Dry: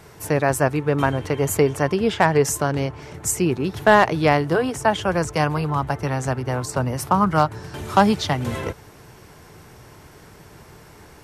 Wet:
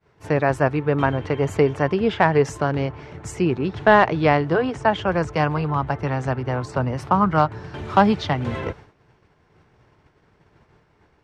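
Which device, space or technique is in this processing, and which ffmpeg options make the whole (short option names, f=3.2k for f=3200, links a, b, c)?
hearing-loss simulation: -filter_complex "[0:a]asettb=1/sr,asplit=3[a][b][c];[a]atrim=end=3.714[d];[b]atrim=start=3.71:end=5.1,asetpts=PTS-STARTPTS,afade=t=in:d=0.004:c=qsin,afade=t=out:st=1.386:d=0.004:c=qsin,lowpass=f=9.4k:w=0.5412,lowpass=f=9.4k:w=1.3066[e];[c]atrim=start=5.096[f];[d][e]acrossfade=d=0.004:c1=hsin:c2=qsin[g];[g][f]acrossfade=d=0.004:c1=qsin:c2=hsin,lowpass=3.4k,agate=range=-33dB:threshold=-36dB:ratio=3:detection=peak"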